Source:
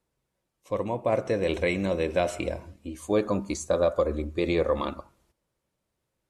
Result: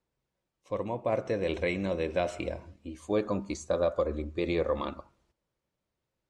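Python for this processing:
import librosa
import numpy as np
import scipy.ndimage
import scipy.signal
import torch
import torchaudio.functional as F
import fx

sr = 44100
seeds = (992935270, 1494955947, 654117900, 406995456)

y = scipy.signal.sosfilt(scipy.signal.butter(2, 6500.0, 'lowpass', fs=sr, output='sos'), x)
y = F.gain(torch.from_numpy(y), -4.0).numpy()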